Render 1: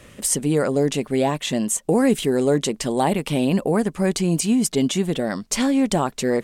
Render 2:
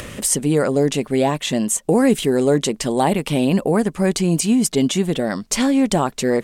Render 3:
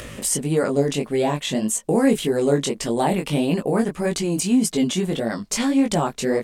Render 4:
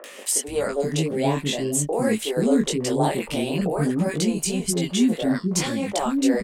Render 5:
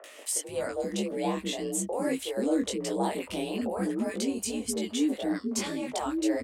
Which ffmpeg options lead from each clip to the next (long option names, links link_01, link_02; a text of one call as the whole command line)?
ffmpeg -i in.wav -af "acompressor=mode=upward:threshold=-26dB:ratio=2.5,volume=2.5dB" out.wav
ffmpeg -i in.wav -af "flanger=delay=17.5:depth=4.7:speed=1.7" out.wav
ffmpeg -i in.wav -filter_complex "[0:a]acrossover=split=380|1200[link_01][link_02][link_03];[link_03]adelay=40[link_04];[link_01]adelay=480[link_05];[link_05][link_02][link_04]amix=inputs=3:normalize=0" out.wav
ffmpeg -i in.wav -af "afreqshift=48,volume=-7.5dB" out.wav